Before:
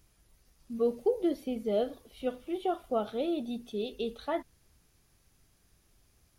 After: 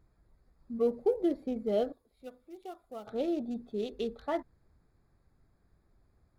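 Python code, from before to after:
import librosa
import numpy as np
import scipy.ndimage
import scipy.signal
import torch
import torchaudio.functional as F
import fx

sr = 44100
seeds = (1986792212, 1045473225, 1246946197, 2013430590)

y = fx.wiener(x, sr, points=15)
y = fx.pre_emphasis(y, sr, coefficient=0.8, at=(1.92, 3.07))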